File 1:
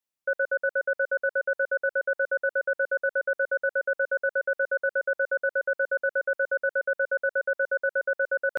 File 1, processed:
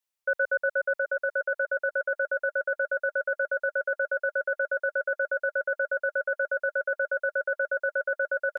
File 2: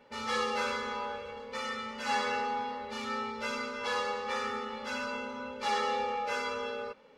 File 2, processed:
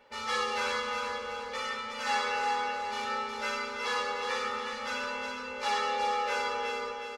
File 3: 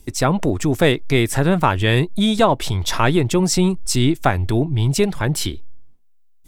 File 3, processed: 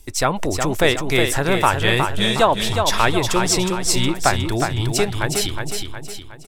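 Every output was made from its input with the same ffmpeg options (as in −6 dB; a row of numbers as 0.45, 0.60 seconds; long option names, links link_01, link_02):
-filter_complex "[0:a]equalizer=frequency=180:width_type=o:width=2.3:gain=-10,asplit=2[link_01][link_02];[link_02]aecho=0:1:364|728|1092|1456|1820|2184:0.531|0.244|0.112|0.0517|0.0238|0.0109[link_03];[link_01][link_03]amix=inputs=2:normalize=0,volume=2dB"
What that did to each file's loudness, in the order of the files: −1.0, +2.0, −1.0 LU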